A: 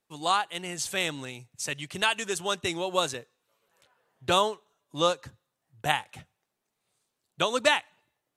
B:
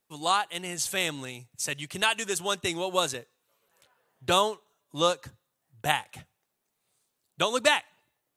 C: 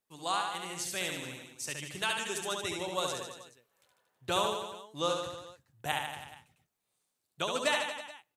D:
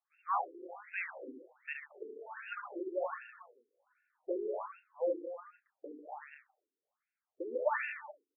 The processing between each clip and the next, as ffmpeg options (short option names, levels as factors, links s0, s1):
-af "highshelf=f=11000:g=10"
-af "aecho=1:1:70|147|231.7|324.9|427.4:0.631|0.398|0.251|0.158|0.1,volume=0.398"
-filter_complex "[0:a]asplit=2[s0][s1];[s1]adelay=34,volume=0.266[s2];[s0][s2]amix=inputs=2:normalize=0,afftfilt=real='re*between(b*sr/1024,330*pow(2000/330,0.5+0.5*sin(2*PI*1.3*pts/sr))/1.41,330*pow(2000/330,0.5+0.5*sin(2*PI*1.3*pts/sr))*1.41)':imag='im*between(b*sr/1024,330*pow(2000/330,0.5+0.5*sin(2*PI*1.3*pts/sr))/1.41,330*pow(2000/330,0.5+0.5*sin(2*PI*1.3*pts/sr))*1.41)':win_size=1024:overlap=0.75,volume=1.19"